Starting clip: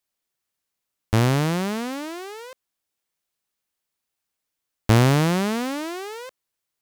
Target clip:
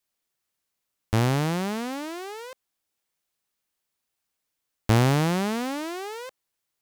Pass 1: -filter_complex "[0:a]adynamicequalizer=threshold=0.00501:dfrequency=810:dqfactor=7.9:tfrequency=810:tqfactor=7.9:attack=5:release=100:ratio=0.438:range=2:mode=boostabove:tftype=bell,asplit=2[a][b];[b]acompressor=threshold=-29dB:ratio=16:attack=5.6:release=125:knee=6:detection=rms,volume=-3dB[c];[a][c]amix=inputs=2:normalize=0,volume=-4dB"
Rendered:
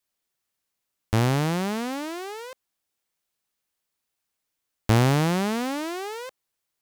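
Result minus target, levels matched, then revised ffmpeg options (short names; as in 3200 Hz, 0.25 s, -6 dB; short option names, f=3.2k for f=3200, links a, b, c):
compressor: peak gain reduction -7.5 dB
-filter_complex "[0:a]adynamicequalizer=threshold=0.00501:dfrequency=810:dqfactor=7.9:tfrequency=810:tqfactor=7.9:attack=5:release=100:ratio=0.438:range=2:mode=boostabove:tftype=bell,asplit=2[a][b];[b]acompressor=threshold=-37dB:ratio=16:attack=5.6:release=125:knee=6:detection=rms,volume=-3dB[c];[a][c]amix=inputs=2:normalize=0,volume=-4dB"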